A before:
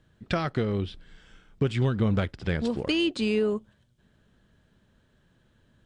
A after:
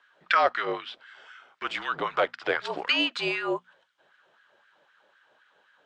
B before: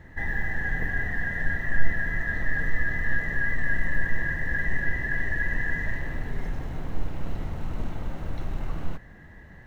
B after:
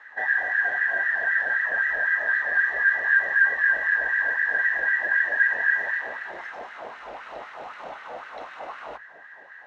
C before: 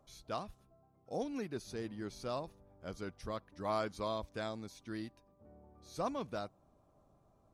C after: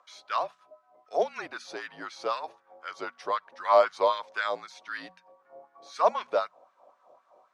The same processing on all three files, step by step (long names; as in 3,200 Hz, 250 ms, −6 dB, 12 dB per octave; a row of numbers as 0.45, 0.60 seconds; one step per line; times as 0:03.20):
high-frequency loss of the air 75 metres
frequency shifter −49 Hz
auto-filter high-pass sine 3.9 Hz 580–1,600 Hz
high-shelf EQ 7,000 Hz −6 dB
mains-hum notches 60/120/180/240 Hz
normalise the peak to −9 dBFS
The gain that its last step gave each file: +6.5, +5.0, +11.5 decibels